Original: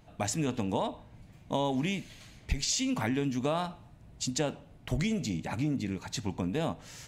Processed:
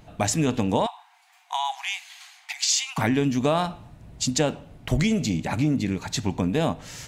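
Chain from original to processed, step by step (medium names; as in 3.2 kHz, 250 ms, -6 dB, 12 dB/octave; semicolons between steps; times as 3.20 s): 0.86–2.98 s: brick-wall FIR high-pass 690 Hz; trim +8 dB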